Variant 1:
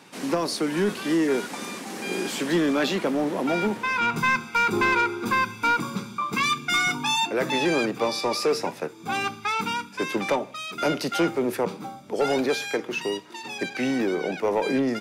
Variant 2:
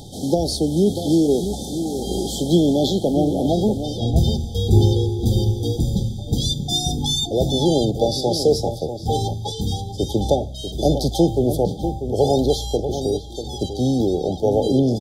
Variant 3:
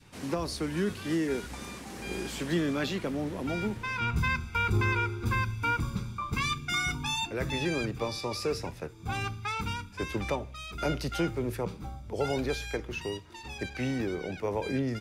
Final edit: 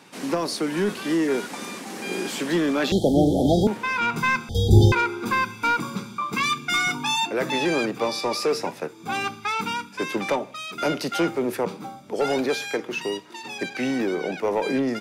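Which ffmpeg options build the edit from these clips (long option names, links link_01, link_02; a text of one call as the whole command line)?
ffmpeg -i take0.wav -i take1.wav -filter_complex "[1:a]asplit=2[link_01][link_02];[0:a]asplit=3[link_03][link_04][link_05];[link_03]atrim=end=2.922[link_06];[link_01]atrim=start=2.918:end=3.672[link_07];[link_04]atrim=start=3.668:end=4.492[link_08];[link_02]atrim=start=4.488:end=4.922[link_09];[link_05]atrim=start=4.918[link_10];[link_06][link_07]acrossfade=duration=0.004:curve1=hsin:curve2=hsin[link_11];[link_11][link_08]acrossfade=duration=0.004:curve1=hsin:curve2=hsin[link_12];[link_12][link_09]acrossfade=duration=0.004:curve1=hsin:curve2=hsin[link_13];[link_13][link_10]acrossfade=duration=0.004:curve1=hsin:curve2=hsin" out.wav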